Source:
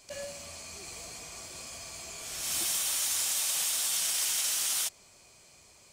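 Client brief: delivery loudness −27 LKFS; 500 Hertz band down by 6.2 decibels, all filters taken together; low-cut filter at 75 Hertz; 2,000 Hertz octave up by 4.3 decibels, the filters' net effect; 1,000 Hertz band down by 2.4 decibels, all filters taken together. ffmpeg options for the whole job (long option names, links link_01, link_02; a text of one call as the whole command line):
ffmpeg -i in.wav -af "highpass=75,equalizer=frequency=500:width_type=o:gain=-7,equalizer=frequency=1000:width_type=o:gain=-3.5,equalizer=frequency=2000:width_type=o:gain=6.5,volume=0.5dB" out.wav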